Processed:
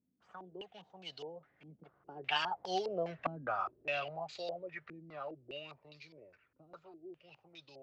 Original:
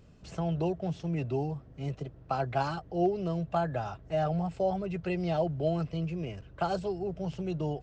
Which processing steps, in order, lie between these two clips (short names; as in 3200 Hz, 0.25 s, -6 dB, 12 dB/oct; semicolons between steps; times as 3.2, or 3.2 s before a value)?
Doppler pass-by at 3.11, 34 m/s, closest 18 m; differentiator; stepped low-pass 4.9 Hz 250–4200 Hz; gain +16 dB